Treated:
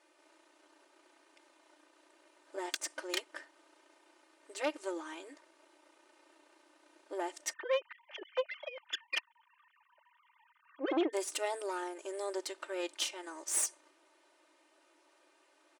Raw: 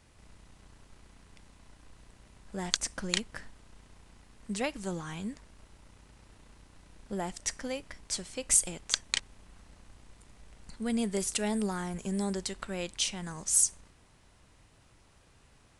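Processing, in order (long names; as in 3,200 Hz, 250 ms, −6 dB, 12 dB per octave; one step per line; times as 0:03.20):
0:07.53–0:11.13: three sine waves on the formant tracks
high-shelf EQ 3,000 Hz −7 dB
comb filter 3.3 ms, depth 96%
tube saturation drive 23 dB, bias 0.65
linear-phase brick-wall high-pass 290 Hz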